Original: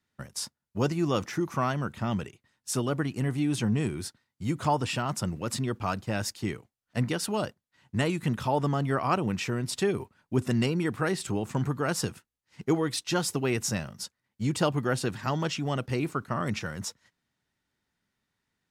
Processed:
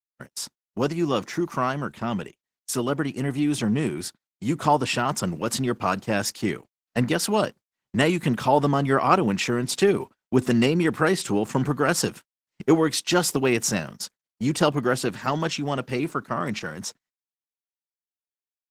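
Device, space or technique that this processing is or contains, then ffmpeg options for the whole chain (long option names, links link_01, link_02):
video call: -af "highpass=170,dynaudnorm=framelen=390:gausssize=21:maxgain=4dB,agate=range=-30dB:threshold=-43dB:ratio=16:detection=peak,volume=4dB" -ar 48000 -c:a libopus -b:a 16k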